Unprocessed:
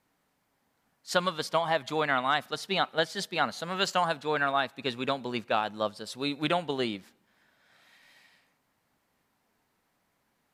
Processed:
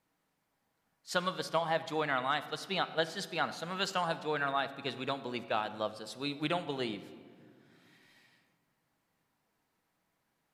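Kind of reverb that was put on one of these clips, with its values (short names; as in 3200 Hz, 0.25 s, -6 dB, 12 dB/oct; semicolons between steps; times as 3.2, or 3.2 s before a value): shoebox room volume 3500 m³, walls mixed, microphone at 0.62 m; gain -5.5 dB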